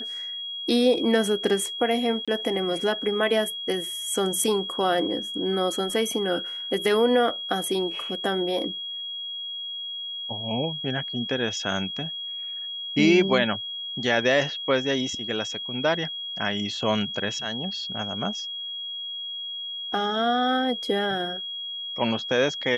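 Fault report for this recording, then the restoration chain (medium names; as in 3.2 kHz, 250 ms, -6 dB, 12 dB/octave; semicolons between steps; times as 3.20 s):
whine 3.3 kHz -31 dBFS
2.25–2.28 s: dropout 26 ms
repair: band-stop 3.3 kHz, Q 30; interpolate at 2.25 s, 26 ms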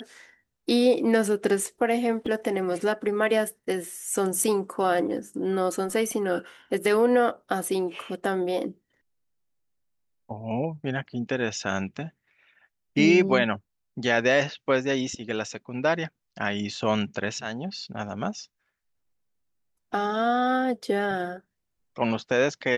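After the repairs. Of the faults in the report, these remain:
nothing left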